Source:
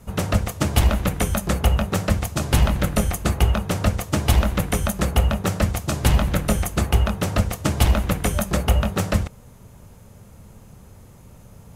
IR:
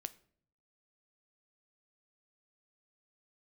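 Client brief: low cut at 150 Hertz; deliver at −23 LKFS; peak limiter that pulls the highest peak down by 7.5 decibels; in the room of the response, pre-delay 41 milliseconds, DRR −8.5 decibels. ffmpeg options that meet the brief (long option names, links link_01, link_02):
-filter_complex "[0:a]highpass=150,alimiter=limit=-13dB:level=0:latency=1,asplit=2[link_01][link_02];[1:a]atrim=start_sample=2205,adelay=41[link_03];[link_02][link_03]afir=irnorm=-1:irlink=0,volume=11.5dB[link_04];[link_01][link_04]amix=inputs=2:normalize=0,volume=-4.5dB"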